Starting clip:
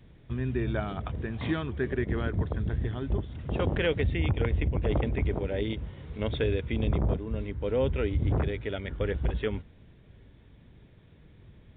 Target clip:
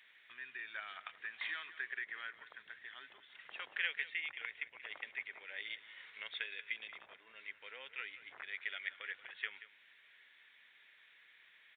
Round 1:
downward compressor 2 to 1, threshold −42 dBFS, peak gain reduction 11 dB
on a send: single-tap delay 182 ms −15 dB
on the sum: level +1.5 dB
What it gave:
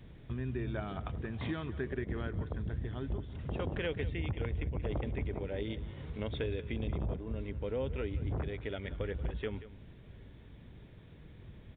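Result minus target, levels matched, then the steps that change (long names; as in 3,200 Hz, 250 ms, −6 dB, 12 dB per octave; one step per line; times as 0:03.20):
2,000 Hz band −12.0 dB
add after downward compressor: high-pass with resonance 1,900 Hz, resonance Q 2.4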